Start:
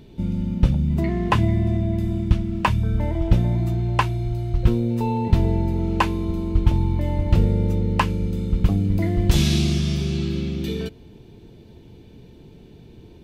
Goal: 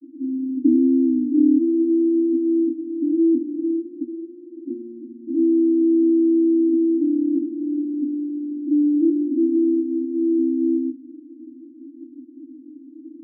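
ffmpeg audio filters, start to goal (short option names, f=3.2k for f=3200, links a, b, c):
-filter_complex "[0:a]asettb=1/sr,asplit=3[a][b][c];[a]atrim=end=0.554[d];[b]atrim=start=0.55:end=1.57,asetpts=PTS-STARTPTS,afade=t=in:d=0.004:c=qsin,afade=t=out:st=1.016:d=0.004:c=qsin,aeval=exprs='val(0)*sin(2*PI*190*n/s)':c=same[e];[c]atrim=start=1.566[f];[d][e]acrossfade=d=0.004:c1=hsin:c2=qsin[g];[g][f]acrossfade=d=0.004:c1=qsin:c2=hsin,asuperpass=centerf=290:order=20:qfactor=3.3,asplit=2[h][i];[i]alimiter=level_in=4dB:limit=-24dB:level=0:latency=1:release=39,volume=-4dB,volume=2dB[j];[h][j]amix=inputs=2:normalize=0,volume=7.5dB"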